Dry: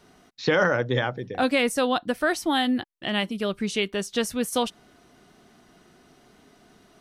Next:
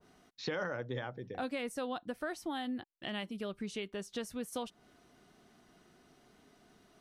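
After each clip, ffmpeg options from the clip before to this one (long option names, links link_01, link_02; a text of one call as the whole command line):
ffmpeg -i in.wav -af "acompressor=threshold=-31dB:ratio=2,adynamicequalizer=threshold=0.00562:dfrequency=1600:dqfactor=0.7:tfrequency=1600:tqfactor=0.7:attack=5:release=100:ratio=0.375:range=2:mode=cutabove:tftype=highshelf,volume=-8dB" out.wav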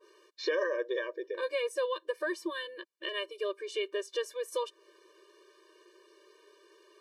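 ffmpeg -i in.wav -af "highshelf=frequency=10000:gain=-10,afftfilt=real='re*eq(mod(floor(b*sr/1024/310),2),1)':imag='im*eq(mod(floor(b*sr/1024/310),2),1)':win_size=1024:overlap=0.75,volume=8.5dB" out.wav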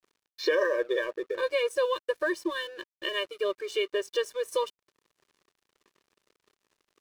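ffmpeg -i in.wav -af "aeval=exprs='sgn(val(0))*max(abs(val(0))-0.00178,0)':channel_layout=same,volume=5.5dB" out.wav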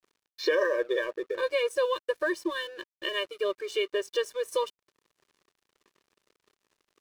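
ffmpeg -i in.wav -af anull out.wav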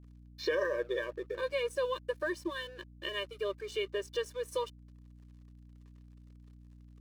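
ffmpeg -i in.wav -af "aeval=exprs='val(0)+0.00447*(sin(2*PI*60*n/s)+sin(2*PI*2*60*n/s)/2+sin(2*PI*3*60*n/s)/3+sin(2*PI*4*60*n/s)/4+sin(2*PI*5*60*n/s)/5)':channel_layout=same,volume=-6dB" out.wav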